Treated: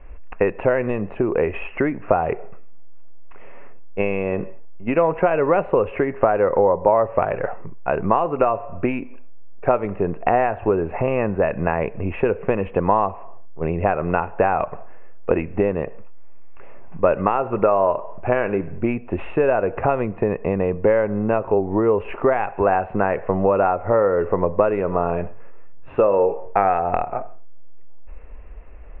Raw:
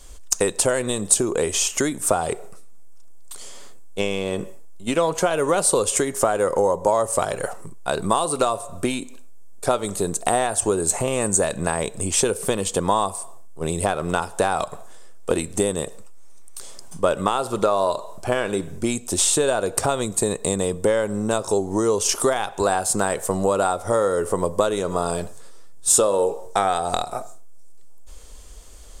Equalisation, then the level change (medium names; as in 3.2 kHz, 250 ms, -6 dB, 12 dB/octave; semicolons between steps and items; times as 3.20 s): rippled Chebyshev low-pass 2.7 kHz, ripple 3 dB; distance through air 51 m; bass shelf 130 Hz +4.5 dB; +3.5 dB